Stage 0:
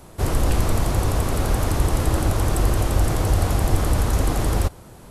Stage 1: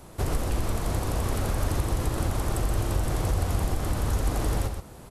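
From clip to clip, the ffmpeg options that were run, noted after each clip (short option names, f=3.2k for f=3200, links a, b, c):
-filter_complex "[0:a]acompressor=threshold=-21dB:ratio=4,asplit=2[a][b];[b]aecho=0:1:67.06|125.4:0.251|0.447[c];[a][c]amix=inputs=2:normalize=0,volume=-2.5dB"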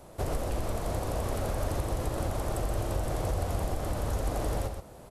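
-af "equalizer=f=600:t=o:w=0.86:g=8,volume=-5.5dB"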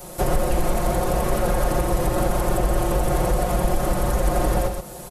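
-filter_complex "[0:a]acrossover=split=750|2600[a][b][c];[c]acompressor=threshold=-55dB:ratio=6[d];[a][b][d]amix=inputs=3:normalize=0,crystalizer=i=2:c=0,aecho=1:1:5.6:0.96,volume=8dB"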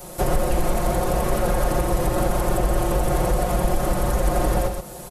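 -af anull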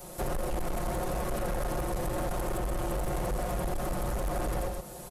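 -af "asoftclip=type=tanh:threshold=-20dB,volume=-6.5dB"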